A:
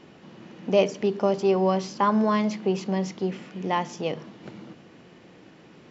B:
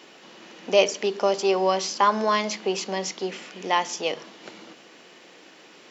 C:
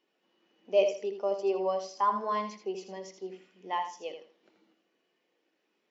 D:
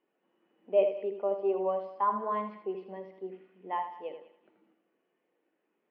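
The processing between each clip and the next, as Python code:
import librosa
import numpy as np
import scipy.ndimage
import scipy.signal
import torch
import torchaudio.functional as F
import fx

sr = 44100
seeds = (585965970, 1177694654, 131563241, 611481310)

y1 = scipy.signal.sosfilt(scipy.signal.butter(2, 380.0, 'highpass', fs=sr, output='sos'), x)
y1 = fx.high_shelf(y1, sr, hz=2600.0, db=11.0)
y1 = y1 * librosa.db_to_amplitude(2.0)
y2 = fx.echo_feedback(y1, sr, ms=81, feedback_pct=34, wet_db=-6.0)
y2 = fx.spectral_expand(y2, sr, expansion=1.5)
y2 = y2 * librosa.db_to_amplitude(-8.5)
y3 = scipy.ndimage.gaussian_filter1d(y2, 3.7, mode='constant')
y3 = fx.echo_thinned(y3, sr, ms=194, feedback_pct=31, hz=1100.0, wet_db=-14.0)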